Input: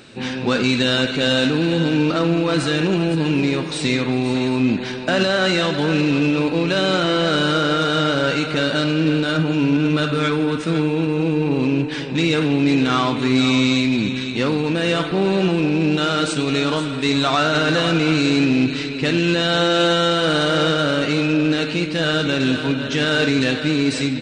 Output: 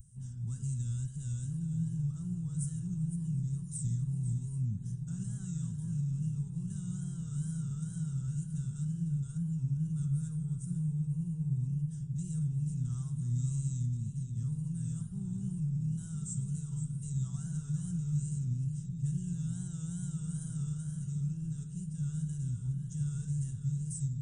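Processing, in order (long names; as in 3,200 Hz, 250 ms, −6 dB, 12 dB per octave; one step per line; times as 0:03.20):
tape wow and flutter 110 cents
inverse Chebyshev band-stop filter 270–4,600 Hz, stop band 40 dB
delay with a low-pass on its return 996 ms, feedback 71%, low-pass 410 Hz, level −8 dB
level −4 dB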